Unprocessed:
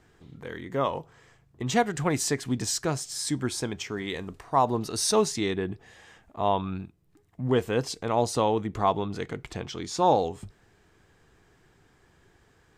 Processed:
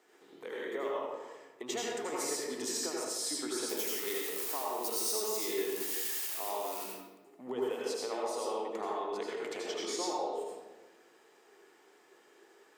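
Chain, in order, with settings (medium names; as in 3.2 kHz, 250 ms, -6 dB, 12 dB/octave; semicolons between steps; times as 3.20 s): 3.69–6.84 s: zero-crossing glitches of -21.5 dBFS; high-pass 330 Hz 24 dB/octave; peaking EQ 430 Hz +4 dB 0.23 oct; compression 6:1, threshold -34 dBFS, peak gain reduction 17.5 dB; treble shelf 12 kHz +9.5 dB; band-stop 1.6 kHz, Q 16; reverberation RT60 1.2 s, pre-delay 74 ms, DRR -4.5 dB; trim -4 dB; Opus 256 kbps 48 kHz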